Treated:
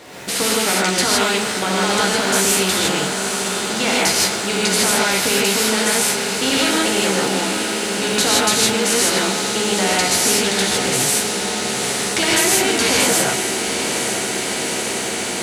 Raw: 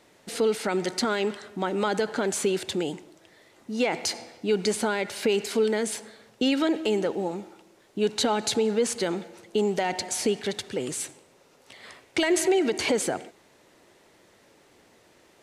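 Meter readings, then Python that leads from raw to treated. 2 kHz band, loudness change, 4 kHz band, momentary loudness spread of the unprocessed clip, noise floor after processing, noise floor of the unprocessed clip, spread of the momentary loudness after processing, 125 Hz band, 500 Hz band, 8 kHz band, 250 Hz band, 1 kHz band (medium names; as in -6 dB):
+14.5 dB, +10.0 dB, +15.5 dB, 9 LU, -23 dBFS, -59 dBFS, 6 LU, +10.5 dB, +5.0 dB, +17.5 dB, +6.5 dB, +11.5 dB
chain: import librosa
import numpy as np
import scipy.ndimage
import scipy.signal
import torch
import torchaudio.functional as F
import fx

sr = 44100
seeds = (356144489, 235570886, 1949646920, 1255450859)

y = scipy.signal.sosfilt(scipy.signal.butter(2, 60.0, 'highpass', fs=sr, output='sos'), x)
y = fx.dmg_crackle(y, sr, seeds[0], per_s=300.0, level_db=-53.0)
y = fx.doubler(y, sr, ms=15.0, db=-5.0)
y = fx.echo_diffused(y, sr, ms=901, feedback_pct=74, wet_db=-12.5)
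y = fx.rev_gated(y, sr, seeds[1], gate_ms=180, shape='rising', drr_db=-6.5)
y = fx.spectral_comp(y, sr, ratio=2.0)
y = y * librosa.db_to_amplitude(2.5)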